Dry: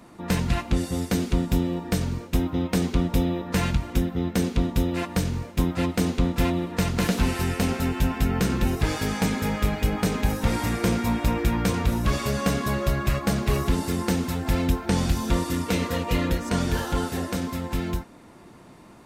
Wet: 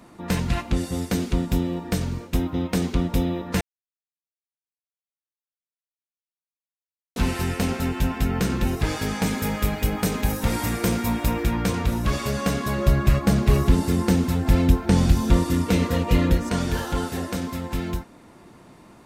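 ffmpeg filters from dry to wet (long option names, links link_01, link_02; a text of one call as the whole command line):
ffmpeg -i in.wav -filter_complex "[0:a]asettb=1/sr,asplit=3[link_01][link_02][link_03];[link_01]atrim=end=9.264[link_04];[link_02]atrim=start=9.26:end=11.45,asetpts=PTS-STARTPTS,afade=type=in:duration=0.004:curve=qsin,afade=type=out:start_time=2.186:duration=0.004:curve=qsin,highshelf=frequency=9900:gain=10.5[link_05];[link_03]atrim=start=11.446[link_06];[link_04][link_05]acrossfade=duration=0.004:curve1=hsin:curve2=qsin[link_07];[link_07][link_06]acrossfade=duration=0.004:curve1=qsin:curve2=hsin,asettb=1/sr,asplit=3[link_08][link_09][link_10];[link_08]atrim=end=12.784[link_11];[link_09]atrim=start=12.78:end=16.49,asetpts=PTS-STARTPTS,afade=type=in:duration=0.004:curve=qsin,afade=type=out:start_time=3.706:duration=0.004:curve=qsin,lowshelf=frequency=380:gain=6.5[link_12];[link_10]atrim=start=16.486[link_13];[link_11][link_12]acrossfade=duration=0.004:curve1=hsin:curve2=qsin[link_14];[link_14][link_13]acrossfade=duration=0.004:curve1=qsin:curve2=hsin,asplit=3[link_15][link_16][link_17];[link_15]atrim=end=3.61,asetpts=PTS-STARTPTS,afade=type=out:start_time=3.606:duration=0.004:curve=hsin[link_18];[link_16]atrim=start=3.61:end=7.16,asetpts=PTS-STARTPTS,volume=0[link_19];[link_17]atrim=start=7.16,asetpts=PTS-STARTPTS,afade=type=in:duration=0.004:curve=hsin[link_20];[link_18][link_19][link_20]concat=n=3:v=0:a=1" out.wav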